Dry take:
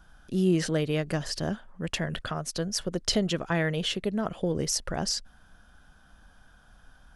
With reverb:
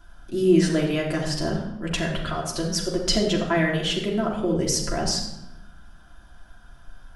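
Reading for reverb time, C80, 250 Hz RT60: 0.85 s, 7.5 dB, 1.2 s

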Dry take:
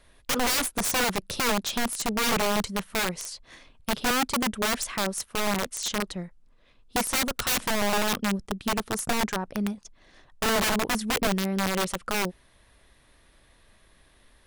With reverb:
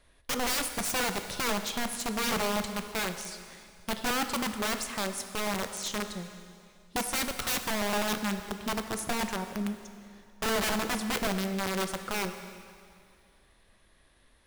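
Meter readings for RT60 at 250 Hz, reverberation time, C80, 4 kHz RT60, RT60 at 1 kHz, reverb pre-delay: 2.3 s, 2.3 s, 10.0 dB, 2.2 s, 2.3 s, 7 ms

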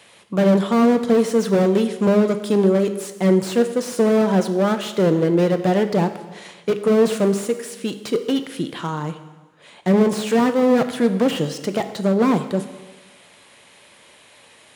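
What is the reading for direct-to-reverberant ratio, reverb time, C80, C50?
8.5 dB, 1.2 s, 12.5 dB, 11.0 dB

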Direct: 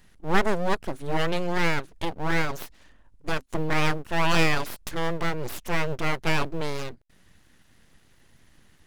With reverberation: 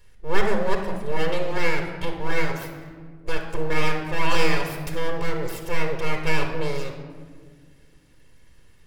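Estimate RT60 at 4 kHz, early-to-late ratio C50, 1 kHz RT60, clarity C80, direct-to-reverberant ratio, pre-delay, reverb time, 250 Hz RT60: 0.95 s, 6.0 dB, 1.5 s, 8.5 dB, 3.0 dB, 4 ms, 1.7 s, 2.5 s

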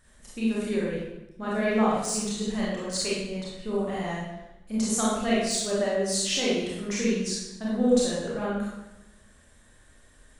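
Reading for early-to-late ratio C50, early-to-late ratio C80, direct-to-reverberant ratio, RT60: -1.0 dB, 2.5 dB, -7.0 dB, 0.95 s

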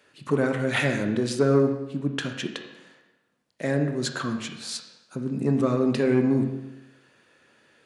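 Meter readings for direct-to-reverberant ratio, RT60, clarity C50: 5.0 dB, 0.90 s, 7.5 dB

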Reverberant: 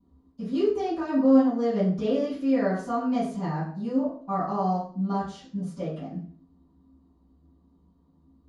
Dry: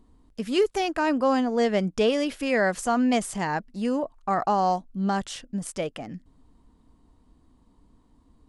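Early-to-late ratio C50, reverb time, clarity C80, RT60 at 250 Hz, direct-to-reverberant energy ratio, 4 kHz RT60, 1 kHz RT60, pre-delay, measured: 3.0 dB, 0.50 s, 8.0 dB, 0.65 s, -18.5 dB, 0.40 s, 0.45 s, 3 ms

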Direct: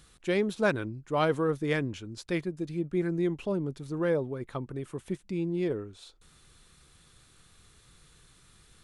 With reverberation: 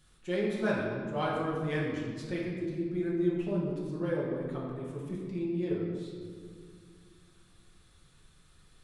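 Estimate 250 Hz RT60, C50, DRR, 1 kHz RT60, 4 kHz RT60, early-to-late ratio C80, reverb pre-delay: 3.0 s, 0.5 dB, -6.0 dB, 1.7 s, 1.2 s, 2.5 dB, 5 ms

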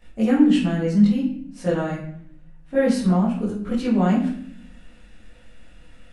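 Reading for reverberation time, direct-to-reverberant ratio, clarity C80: 0.65 s, -10.5 dB, 8.5 dB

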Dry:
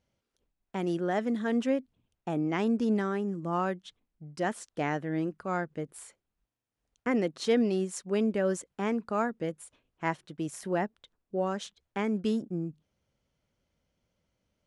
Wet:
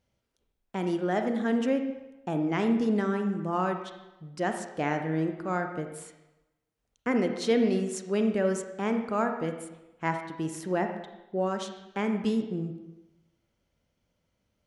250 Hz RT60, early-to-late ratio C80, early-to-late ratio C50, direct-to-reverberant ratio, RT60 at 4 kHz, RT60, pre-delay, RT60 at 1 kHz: 0.95 s, 9.0 dB, 6.5 dB, 5.5 dB, 0.85 s, 1.0 s, 31 ms, 1.0 s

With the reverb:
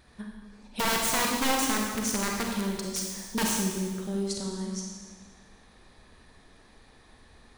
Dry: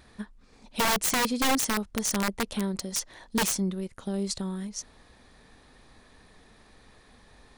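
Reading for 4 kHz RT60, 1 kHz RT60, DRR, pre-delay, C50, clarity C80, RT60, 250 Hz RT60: 1.4 s, 1.4 s, -0.5 dB, 31 ms, 1.0 dB, 3.0 dB, 1.5 s, 1.7 s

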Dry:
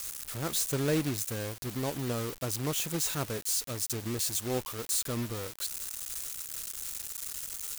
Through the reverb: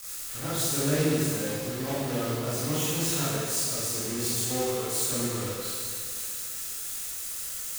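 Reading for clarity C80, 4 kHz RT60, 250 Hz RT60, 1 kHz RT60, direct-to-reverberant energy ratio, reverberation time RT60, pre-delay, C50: -1.5 dB, 2.0 s, 2.0 s, 2.0 s, -10.5 dB, 2.0 s, 24 ms, -4.0 dB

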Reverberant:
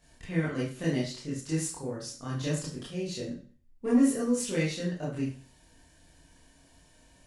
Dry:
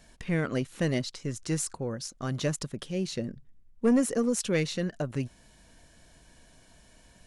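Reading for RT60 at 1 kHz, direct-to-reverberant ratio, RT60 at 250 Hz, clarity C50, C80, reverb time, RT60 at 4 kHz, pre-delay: 0.40 s, -7.5 dB, 0.40 s, 4.0 dB, 9.5 dB, 0.40 s, 0.40 s, 21 ms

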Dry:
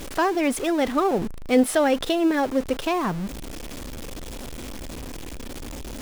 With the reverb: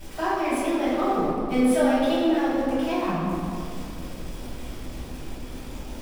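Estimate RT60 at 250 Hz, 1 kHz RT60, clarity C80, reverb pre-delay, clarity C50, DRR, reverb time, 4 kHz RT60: 3.3 s, 2.4 s, 0.0 dB, 3 ms, -2.5 dB, -11.0 dB, 2.4 s, 1.3 s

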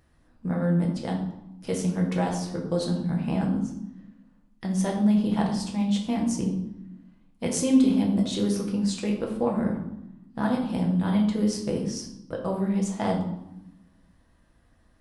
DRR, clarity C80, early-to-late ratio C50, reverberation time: -1.0 dB, 9.0 dB, 6.0 dB, 0.85 s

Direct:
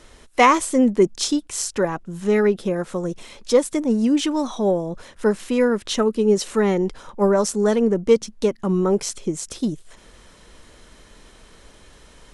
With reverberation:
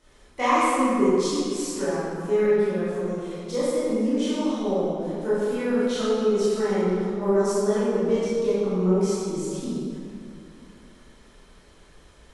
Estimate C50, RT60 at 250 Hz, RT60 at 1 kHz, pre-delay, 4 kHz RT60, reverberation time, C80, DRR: -4.5 dB, 2.8 s, 2.4 s, 17 ms, 1.5 s, 2.5 s, -2.0 dB, -11.5 dB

